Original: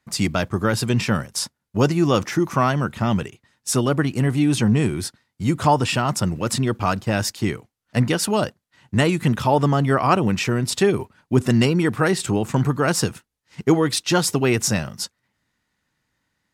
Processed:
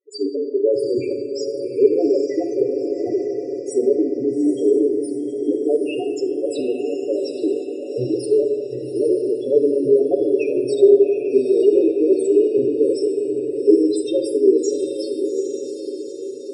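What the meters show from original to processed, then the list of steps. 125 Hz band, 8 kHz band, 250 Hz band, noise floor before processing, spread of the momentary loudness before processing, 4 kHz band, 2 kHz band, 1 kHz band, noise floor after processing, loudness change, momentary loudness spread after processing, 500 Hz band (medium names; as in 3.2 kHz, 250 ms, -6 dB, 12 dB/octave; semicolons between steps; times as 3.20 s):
-20.5 dB, under -10 dB, 0.0 dB, -77 dBFS, 9 LU, under -10 dB, under -15 dB, under -15 dB, -30 dBFS, +1.5 dB, 10 LU, +8.5 dB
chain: comb filter that takes the minimum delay 7.1 ms; high-pass 130 Hz 24 dB/octave; peaking EQ 400 Hz +10.5 dB 0.73 oct; hum notches 50/100/150/200/250/300/350/400 Hz; in parallel at -11.5 dB: bit crusher 5-bit; on the sum: treble shelf 12 kHz +6 dB; static phaser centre 410 Hz, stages 4; loudest bins only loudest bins 4; echo that smears into a reverb 835 ms, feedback 51%, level -6.5 dB; simulated room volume 990 m³, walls mixed, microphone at 0.81 m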